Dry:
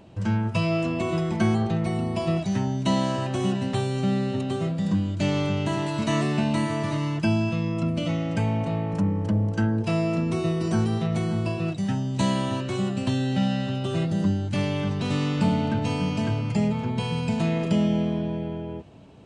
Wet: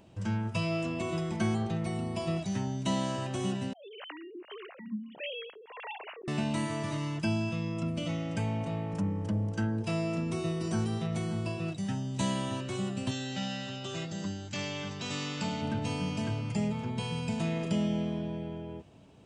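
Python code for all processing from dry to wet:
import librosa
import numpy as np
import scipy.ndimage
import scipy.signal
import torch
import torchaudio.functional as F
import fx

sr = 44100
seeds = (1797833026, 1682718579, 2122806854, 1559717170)

y = fx.chain(x, sr, fx.sine_speech(),
    fx.highpass(hz=730.0, slope=6),
    fx.harmonic_tremolo(hz=1.6, depth_pct=100, crossover_hz=410.0), at=(3.73, 6.28))
y = fx.chain(y, sr, fx.cheby1_lowpass(hz=7800.0, order=8),
    fx.tilt_eq(slope=2.0), at=(13.11, 15.62))
y = fx.high_shelf(y, sr, hz=3900.0, db=7.0)
y = fx.notch(y, sr, hz=4200.0, q=14.0)
y = y * librosa.db_to_amplitude(-7.5)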